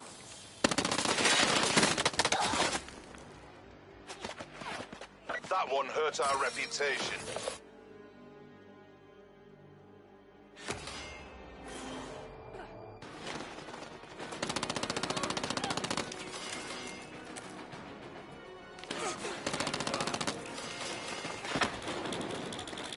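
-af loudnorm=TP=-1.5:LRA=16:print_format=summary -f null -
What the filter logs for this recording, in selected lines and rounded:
Input Integrated:    -34.0 LUFS
Input True Peak:      -9.2 dBTP
Input LRA:            15.4 LU
Input Threshold:     -45.5 LUFS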